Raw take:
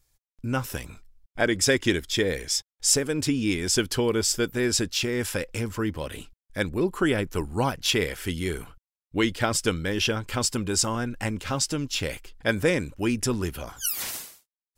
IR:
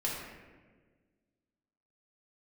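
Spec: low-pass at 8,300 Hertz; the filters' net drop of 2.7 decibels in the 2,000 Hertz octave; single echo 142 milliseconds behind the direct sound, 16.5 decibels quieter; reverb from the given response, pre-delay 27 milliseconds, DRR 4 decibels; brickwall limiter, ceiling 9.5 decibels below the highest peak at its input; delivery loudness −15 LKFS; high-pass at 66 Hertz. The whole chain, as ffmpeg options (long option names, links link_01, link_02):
-filter_complex "[0:a]highpass=66,lowpass=8300,equalizer=frequency=2000:width_type=o:gain=-3.5,alimiter=limit=-18dB:level=0:latency=1,aecho=1:1:142:0.15,asplit=2[link_01][link_02];[1:a]atrim=start_sample=2205,adelay=27[link_03];[link_02][link_03]afir=irnorm=-1:irlink=0,volume=-9dB[link_04];[link_01][link_04]amix=inputs=2:normalize=0,volume=12.5dB"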